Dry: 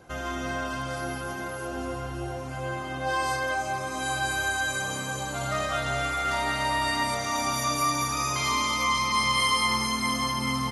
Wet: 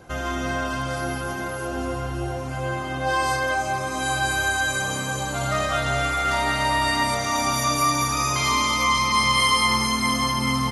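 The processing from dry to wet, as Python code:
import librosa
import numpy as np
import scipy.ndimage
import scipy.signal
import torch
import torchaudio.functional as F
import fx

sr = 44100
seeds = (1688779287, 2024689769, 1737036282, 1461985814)

y = fx.low_shelf(x, sr, hz=140.0, db=3.0)
y = F.gain(torch.from_numpy(y), 4.5).numpy()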